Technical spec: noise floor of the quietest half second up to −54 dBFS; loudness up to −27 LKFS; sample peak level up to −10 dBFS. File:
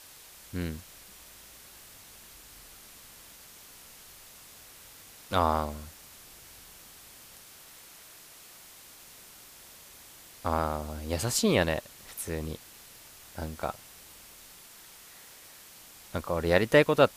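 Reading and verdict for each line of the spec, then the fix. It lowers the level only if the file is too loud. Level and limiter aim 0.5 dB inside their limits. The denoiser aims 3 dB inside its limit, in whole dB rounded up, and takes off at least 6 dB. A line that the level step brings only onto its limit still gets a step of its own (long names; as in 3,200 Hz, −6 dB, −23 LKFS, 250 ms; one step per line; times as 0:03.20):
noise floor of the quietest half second −51 dBFS: out of spec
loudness −29.5 LKFS: in spec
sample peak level −6.0 dBFS: out of spec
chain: broadband denoise 6 dB, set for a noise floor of −51 dBFS
brickwall limiter −10.5 dBFS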